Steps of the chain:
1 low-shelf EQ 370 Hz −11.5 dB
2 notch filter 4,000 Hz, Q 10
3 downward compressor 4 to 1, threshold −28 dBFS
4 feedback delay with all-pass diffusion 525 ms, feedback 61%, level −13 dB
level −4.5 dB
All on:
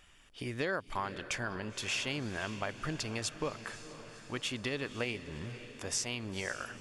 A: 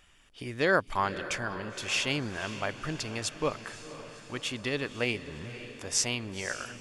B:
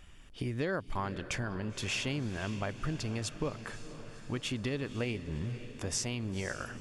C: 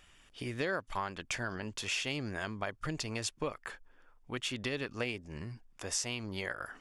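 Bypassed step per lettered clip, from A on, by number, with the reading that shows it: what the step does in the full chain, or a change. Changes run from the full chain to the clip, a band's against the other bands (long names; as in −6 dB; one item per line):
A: 3, average gain reduction 2.5 dB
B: 1, 125 Hz band +7.5 dB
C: 4, echo-to-direct ratio −11.0 dB to none audible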